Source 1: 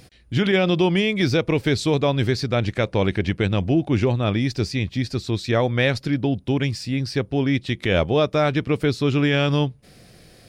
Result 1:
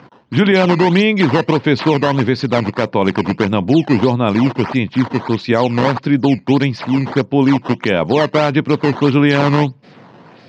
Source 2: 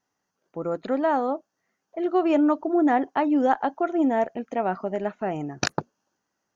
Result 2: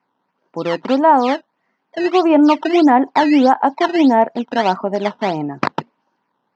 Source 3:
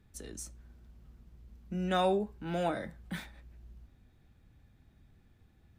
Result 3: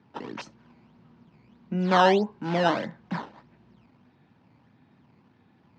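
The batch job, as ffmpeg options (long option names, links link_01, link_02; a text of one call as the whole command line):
ffmpeg -i in.wav -af "acrusher=samples=11:mix=1:aa=0.000001:lfo=1:lforange=17.6:lforate=1.6,highpass=frequency=130:width=0.5412,highpass=frequency=130:width=1.3066,equalizer=frequency=250:width_type=q:width=4:gain=4,equalizer=frequency=950:width_type=q:width=4:gain=9,equalizer=frequency=3600:width_type=q:width=4:gain=-3,lowpass=frequency=4500:width=0.5412,lowpass=frequency=4500:width=1.3066,alimiter=level_in=8.5dB:limit=-1dB:release=50:level=0:latency=1,volume=-1dB" out.wav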